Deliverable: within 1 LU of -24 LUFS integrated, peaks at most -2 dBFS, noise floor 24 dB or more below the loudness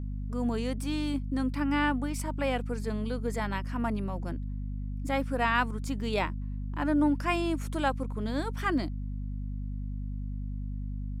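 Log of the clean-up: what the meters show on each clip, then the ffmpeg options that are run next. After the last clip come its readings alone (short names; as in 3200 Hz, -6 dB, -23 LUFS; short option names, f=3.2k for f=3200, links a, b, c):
hum 50 Hz; harmonics up to 250 Hz; hum level -32 dBFS; loudness -31.5 LUFS; peak -12.5 dBFS; loudness target -24.0 LUFS
-> -af "bandreject=f=50:t=h:w=4,bandreject=f=100:t=h:w=4,bandreject=f=150:t=h:w=4,bandreject=f=200:t=h:w=4,bandreject=f=250:t=h:w=4"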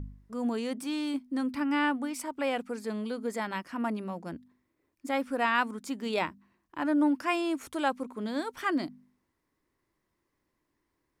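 hum none; loudness -31.5 LUFS; peak -13.0 dBFS; loudness target -24.0 LUFS
-> -af "volume=7.5dB"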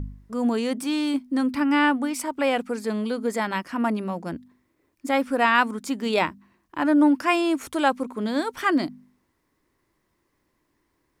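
loudness -24.0 LUFS; peak -5.5 dBFS; noise floor -72 dBFS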